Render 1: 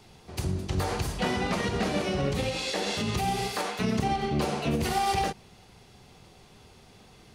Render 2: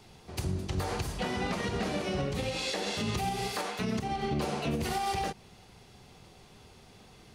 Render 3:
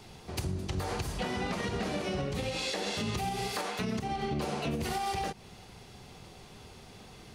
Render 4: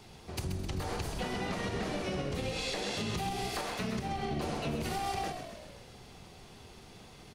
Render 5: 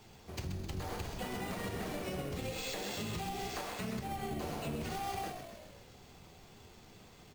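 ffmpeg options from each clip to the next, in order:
-af "alimiter=limit=-21dB:level=0:latency=1:release=275,volume=-1dB"
-af "acompressor=threshold=-38dB:ratio=2,volume=4dB"
-filter_complex "[0:a]asplit=8[a][b][c][d][e][f][g][h];[b]adelay=130,afreqshift=-54,volume=-8dB[i];[c]adelay=260,afreqshift=-108,volume=-12.6dB[j];[d]adelay=390,afreqshift=-162,volume=-17.2dB[k];[e]adelay=520,afreqshift=-216,volume=-21.7dB[l];[f]adelay=650,afreqshift=-270,volume=-26.3dB[m];[g]adelay=780,afreqshift=-324,volume=-30.9dB[n];[h]adelay=910,afreqshift=-378,volume=-35.5dB[o];[a][i][j][k][l][m][n][o]amix=inputs=8:normalize=0,volume=-2.5dB"
-af "acrusher=samples=4:mix=1:aa=0.000001,flanger=delay=8.9:depth=3.7:regen=-66:speed=0.73:shape=sinusoidal"

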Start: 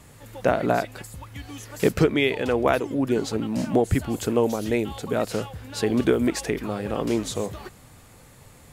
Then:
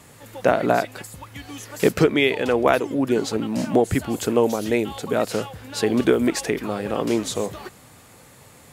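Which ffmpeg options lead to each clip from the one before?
-af "highpass=f=170:p=1,volume=3.5dB"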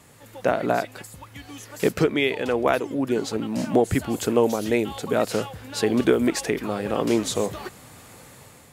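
-af "dynaudnorm=f=270:g=5:m=7.5dB,volume=-4dB"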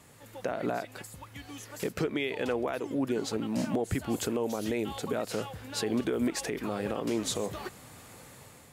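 -af "alimiter=limit=-16dB:level=0:latency=1:release=144,volume=-4dB"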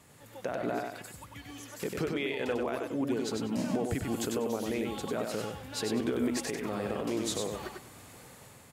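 -af "aecho=1:1:97|194|291:0.631|0.139|0.0305,volume=-2.5dB"

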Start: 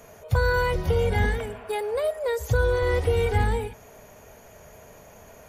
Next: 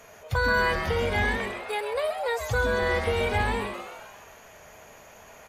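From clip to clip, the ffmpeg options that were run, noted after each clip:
-filter_complex "[0:a]lowpass=f=3.2k:p=1,tiltshelf=f=850:g=-7,asplit=2[a][b];[b]asplit=7[c][d][e][f][g][h][i];[c]adelay=130,afreqshift=150,volume=-8.5dB[j];[d]adelay=260,afreqshift=300,volume=-13.4dB[k];[e]adelay=390,afreqshift=450,volume=-18.3dB[l];[f]adelay=520,afreqshift=600,volume=-23.1dB[m];[g]adelay=650,afreqshift=750,volume=-28dB[n];[h]adelay=780,afreqshift=900,volume=-32.9dB[o];[i]adelay=910,afreqshift=1050,volume=-37.8dB[p];[j][k][l][m][n][o][p]amix=inputs=7:normalize=0[q];[a][q]amix=inputs=2:normalize=0"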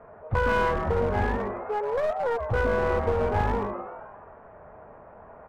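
-af "lowpass=f=1.3k:w=0.5412,lowpass=f=1.3k:w=1.3066,aeval=exprs='clip(val(0),-1,0.0376)':c=same,volume=3.5dB"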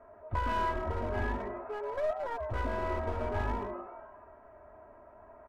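-af "aecho=1:1:3.1:0.77,volume=-9dB"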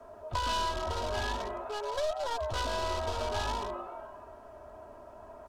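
-filter_complex "[0:a]aemphasis=mode=reproduction:type=75fm,acrossover=split=93|520[a][b][c];[a]acompressor=threshold=-42dB:ratio=4[d];[b]acompressor=threshold=-52dB:ratio=4[e];[c]acompressor=threshold=-35dB:ratio=4[f];[d][e][f]amix=inputs=3:normalize=0,acrossover=split=510[g][h];[h]aexciter=amount=10.9:drive=8.1:freq=3.2k[i];[g][i]amix=inputs=2:normalize=0,volume=4.5dB"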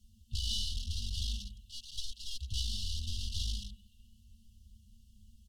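-af "afftfilt=real='re*(1-between(b*sr/4096,230,2700))':imag='im*(1-between(b*sr/4096,230,2700))':win_size=4096:overlap=0.75,aecho=1:1:3.3:0.65"

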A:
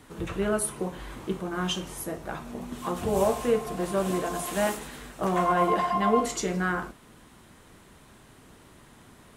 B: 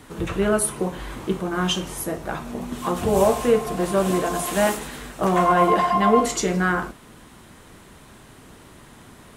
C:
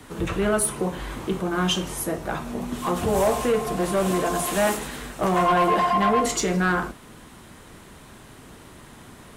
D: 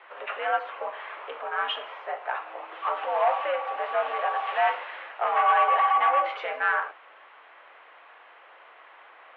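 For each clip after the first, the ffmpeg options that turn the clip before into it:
-af "acontrast=62"
-filter_complex "[0:a]acrossover=split=130|560|2400[a][b][c][d];[b]alimiter=limit=-18.5dB:level=0:latency=1[e];[a][e][c][d]amix=inputs=4:normalize=0,asoftclip=type=tanh:threshold=-14.5dB,volume=1dB"
-af "aeval=exprs='val(0)+0.0112*(sin(2*PI*50*n/s)+sin(2*PI*2*50*n/s)/2+sin(2*PI*3*50*n/s)/3+sin(2*PI*4*50*n/s)/4+sin(2*PI*5*50*n/s)/5)':c=same,highpass=f=540:t=q:w=0.5412,highpass=f=540:t=q:w=1.307,lowpass=f=2.8k:t=q:w=0.5176,lowpass=f=2.8k:t=q:w=0.7071,lowpass=f=2.8k:t=q:w=1.932,afreqshift=83"

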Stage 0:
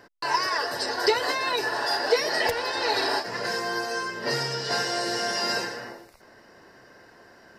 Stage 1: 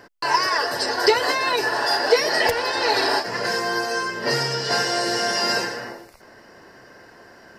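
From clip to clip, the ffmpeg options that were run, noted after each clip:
-af "bandreject=f=3.8k:w=19,volume=5dB"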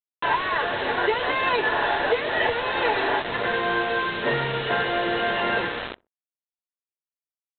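-filter_complex "[0:a]alimiter=limit=-11dB:level=0:latency=1:release=405,aresample=8000,acrusher=bits=4:mix=0:aa=0.000001,aresample=44100,asplit=2[a][b];[b]adelay=63,lowpass=f=970:p=1,volume=-24dB,asplit=2[c][d];[d]adelay=63,lowpass=f=970:p=1,volume=0.3[e];[a][c][e]amix=inputs=3:normalize=0"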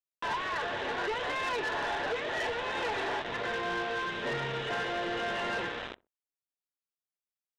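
-af "asoftclip=type=tanh:threshold=-23dB,volume=-5.5dB"

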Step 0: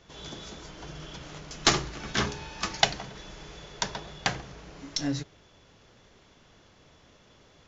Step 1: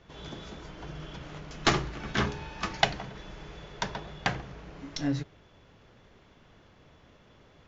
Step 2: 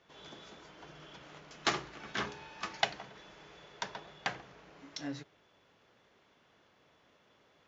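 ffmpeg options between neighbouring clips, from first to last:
-af "bass=f=250:g=2,treble=f=4k:g=-11"
-af "highpass=f=440:p=1,volume=-5.5dB"

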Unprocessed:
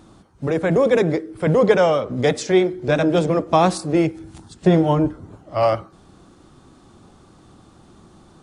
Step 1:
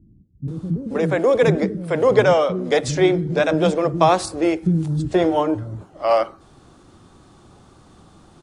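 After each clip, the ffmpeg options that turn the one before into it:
-filter_complex "[0:a]acrossover=split=250[a][b];[b]adelay=480[c];[a][c]amix=inputs=2:normalize=0,volume=1dB"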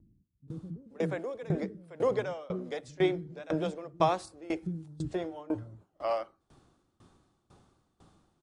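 -af "aeval=exprs='val(0)*pow(10,-22*if(lt(mod(2*n/s,1),2*abs(2)/1000),1-mod(2*n/s,1)/(2*abs(2)/1000),(mod(2*n/s,1)-2*abs(2)/1000)/(1-2*abs(2)/1000))/20)':c=same,volume=-8.5dB"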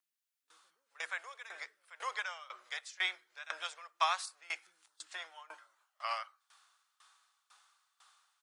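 -af "highpass=f=1.2k:w=0.5412,highpass=f=1.2k:w=1.3066,volume=5.5dB"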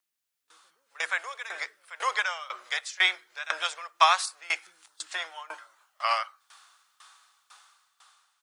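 -af "dynaudnorm=f=120:g=13:m=6dB,volume=5dB"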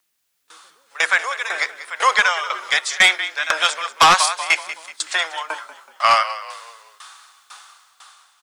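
-filter_complex "[0:a]asplit=5[a][b][c][d][e];[b]adelay=188,afreqshift=-36,volume=-15dB[f];[c]adelay=376,afreqshift=-72,volume=-22.7dB[g];[d]adelay=564,afreqshift=-108,volume=-30.5dB[h];[e]adelay=752,afreqshift=-144,volume=-38.2dB[i];[a][f][g][h][i]amix=inputs=5:normalize=0,aeval=exprs='0.531*sin(PI/2*2.82*val(0)/0.531)':c=same"

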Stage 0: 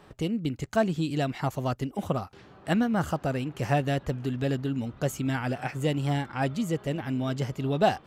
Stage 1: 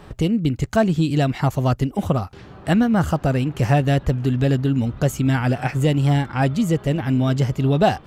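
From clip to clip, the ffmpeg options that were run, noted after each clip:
-filter_complex "[0:a]lowshelf=f=120:g=11,asplit=2[a][b];[b]alimiter=limit=-20dB:level=0:latency=1:release=482,volume=-1.5dB[c];[a][c]amix=inputs=2:normalize=0,volume=3dB"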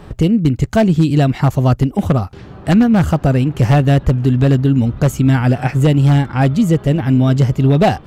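-af "lowshelf=f=490:g=5,aeval=exprs='0.501*(abs(mod(val(0)/0.501+3,4)-2)-1)':c=same,volume=2.5dB"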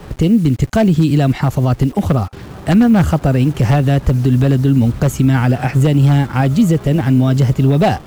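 -filter_complex "[0:a]acrossover=split=310|670[a][b][c];[a]acrusher=bits=6:mix=0:aa=0.000001[d];[d][b][c]amix=inputs=3:normalize=0,alimiter=level_in=5.5dB:limit=-1dB:release=50:level=0:latency=1,volume=-3dB"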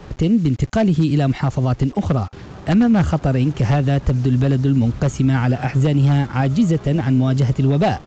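-af "aresample=16000,aresample=44100,volume=-4dB"

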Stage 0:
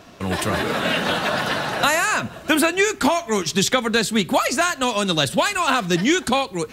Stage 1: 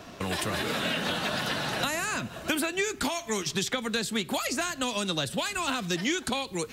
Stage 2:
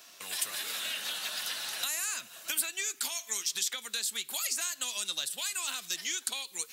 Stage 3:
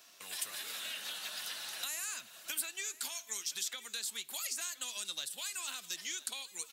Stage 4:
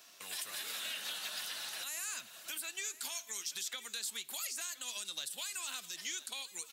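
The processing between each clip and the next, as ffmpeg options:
-filter_complex "[0:a]acrossover=split=350|2300[a][b][c];[a]acompressor=threshold=-35dB:ratio=4[d];[b]acompressor=threshold=-34dB:ratio=4[e];[c]acompressor=threshold=-32dB:ratio=4[f];[d][e][f]amix=inputs=3:normalize=0"
-af "aderivative,volume=3.5dB"
-af "aecho=1:1:1020:0.126,volume=-6dB"
-af "alimiter=level_in=5dB:limit=-24dB:level=0:latency=1:release=65,volume=-5dB,volume=1dB"

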